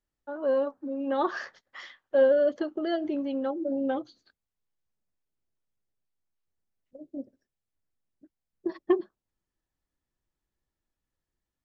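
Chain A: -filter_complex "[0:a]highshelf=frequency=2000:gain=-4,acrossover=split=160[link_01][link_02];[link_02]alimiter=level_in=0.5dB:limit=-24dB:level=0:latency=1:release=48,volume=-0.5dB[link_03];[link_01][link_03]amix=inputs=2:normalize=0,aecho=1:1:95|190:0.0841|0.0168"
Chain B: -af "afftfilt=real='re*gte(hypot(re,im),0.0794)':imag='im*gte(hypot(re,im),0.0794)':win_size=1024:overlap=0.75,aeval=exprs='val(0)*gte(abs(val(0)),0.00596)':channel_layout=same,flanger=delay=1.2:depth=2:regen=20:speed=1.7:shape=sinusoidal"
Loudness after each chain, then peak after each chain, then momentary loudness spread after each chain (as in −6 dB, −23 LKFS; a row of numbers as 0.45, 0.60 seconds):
−33.5, −31.5 LKFS; −23.0, −13.5 dBFS; 16, 21 LU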